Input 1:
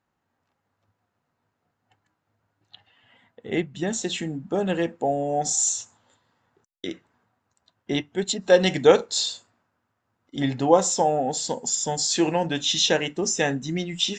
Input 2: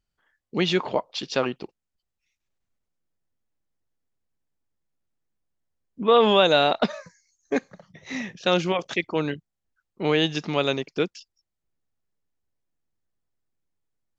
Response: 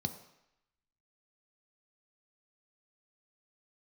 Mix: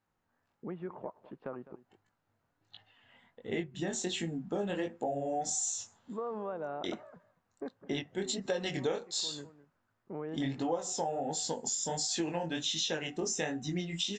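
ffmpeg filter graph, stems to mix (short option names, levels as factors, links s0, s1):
-filter_complex "[0:a]bandreject=f=374.6:t=h:w=4,bandreject=f=749.2:t=h:w=4,bandreject=f=1123.8:t=h:w=4,flanger=delay=17.5:depth=7.2:speed=1.4,volume=0.841,asplit=2[s0][s1];[1:a]lowpass=f=1400:w=0.5412,lowpass=f=1400:w=1.3066,acompressor=threshold=0.0178:ratio=2,adelay=100,volume=0.376,asplit=2[s2][s3];[s3]volume=0.141[s4];[s1]apad=whole_len=630081[s5];[s2][s5]sidechaincompress=threshold=0.0355:ratio=8:attack=16:release=410[s6];[s4]aecho=0:1:206:1[s7];[s0][s6][s7]amix=inputs=3:normalize=0,acompressor=threshold=0.0282:ratio=5"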